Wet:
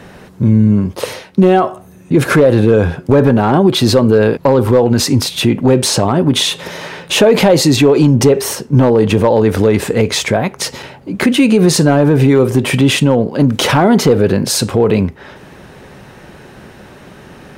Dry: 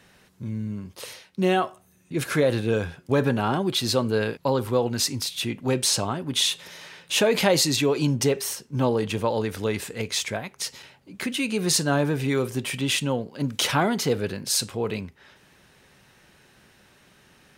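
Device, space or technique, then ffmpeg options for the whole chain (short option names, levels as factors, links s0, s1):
mastering chain: -af "equalizer=f=550:t=o:w=2.8:g=3,acompressor=threshold=0.0562:ratio=2,asoftclip=type=tanh:threshold=0.266,tiltshelf=f=1500:g=5.5,asoftclip=type=hard:threshold=0.211,alimiter=level_in=6.68:limit=0.891:release=50:level=0:latency=1,volume=0.891"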